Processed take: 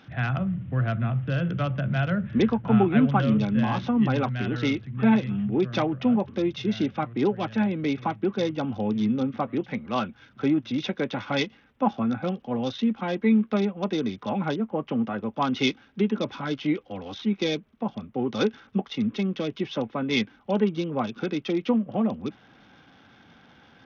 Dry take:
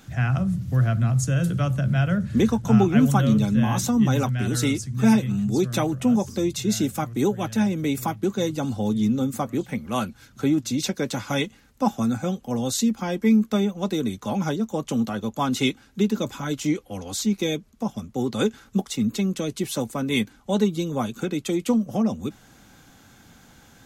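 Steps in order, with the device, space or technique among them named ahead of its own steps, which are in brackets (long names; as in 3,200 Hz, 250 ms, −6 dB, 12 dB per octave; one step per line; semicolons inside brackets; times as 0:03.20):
0:14.59–0:15.30: parametric band 3,500 Hz −12.5 dB 0.29 octaves
Bluetooth headset (high-pass filter 190 Hz 6 dB per octave; downsampling to 8,000 Hz; SBC 64 kbit/s 48,000 Hz)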